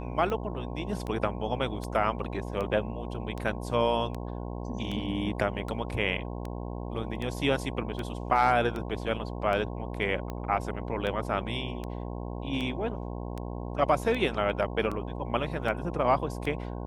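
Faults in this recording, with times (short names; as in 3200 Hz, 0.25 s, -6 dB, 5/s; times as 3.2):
buzz 60 Hz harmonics 18 -36 dBFS
tick 78 rpm -22 dBFS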